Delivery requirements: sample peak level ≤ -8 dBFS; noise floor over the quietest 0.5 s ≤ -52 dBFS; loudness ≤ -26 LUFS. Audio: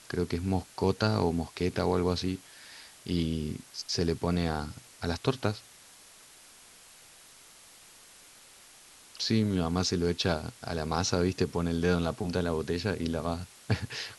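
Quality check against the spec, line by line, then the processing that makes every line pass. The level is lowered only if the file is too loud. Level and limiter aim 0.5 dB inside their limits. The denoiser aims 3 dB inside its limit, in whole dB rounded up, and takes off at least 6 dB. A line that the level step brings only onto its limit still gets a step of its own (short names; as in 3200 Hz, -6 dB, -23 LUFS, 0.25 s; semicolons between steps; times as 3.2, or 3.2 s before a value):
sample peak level -10.5 dBFS: OK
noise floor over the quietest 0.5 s -54 dBFS: OK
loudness -30.5 LUFS: OK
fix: none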